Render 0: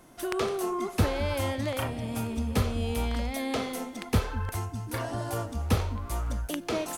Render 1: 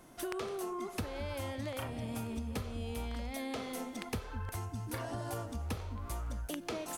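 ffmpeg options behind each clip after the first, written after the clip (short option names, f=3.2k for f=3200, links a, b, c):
-af "acompressor=threshold=-33dB:ratio=6,volume=-2.5dB"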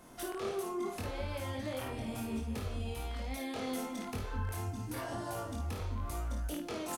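-filter_complex "[0:a]alimiter=level_in=8dB:limit=-24dB:level=0:latency=1:release=24,volume=-8dB,asplit=2[a][b];[b]aecho=0:1:23|54|74:0.708|0.531|0.299[c];[a][c]amix=inputs=2:normalize=0"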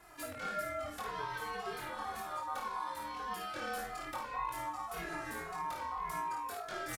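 -filter_complex "[0:a]aeval=exprs='val(0)*sin(2*PI*1000*n/s)':c=same,asplit=2[a][b];[b]adelay=2.4,afreqshift=-1.8[c];[a][c]amix=inputs=2:normalize=1,volume=3.5dB"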